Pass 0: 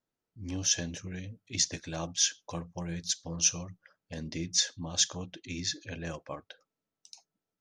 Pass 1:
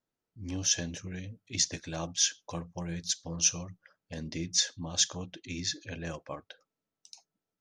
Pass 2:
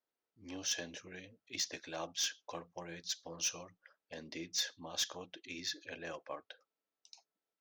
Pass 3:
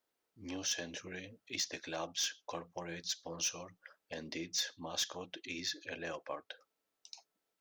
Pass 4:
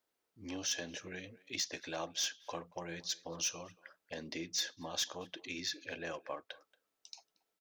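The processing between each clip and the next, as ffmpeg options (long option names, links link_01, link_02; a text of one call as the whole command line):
ffmpeg -i in.wav -af anull out.wav
ffmpeg -i in.wav -filter_complex "[0:a]acrossover=split=300 5800:gain=0.112 1 0.112[link_01][link_02][link_03];[link_01][link_02][link_03]amix=inputs=3:normalize=0,asoftclip=type=tanh:threshold=-24.5dB,volume=-2.5dB" out.wav
ffmpeg -i in.wav -af "acompressor=threshold=-51dB:ratio=1.5,volume=6.5dB" out.wav
ffmpeg -i in.wav -filter_complex "[0:a]asplit=2[link_01][link_02];[link_02]adelay=230,highpass=300,lowpass=3400,asoftclip=type=hard:threshold=-36dB,volume=-21dB[link_03];[link_01][link_03]amix=inputs=2:normalize=0" out.wav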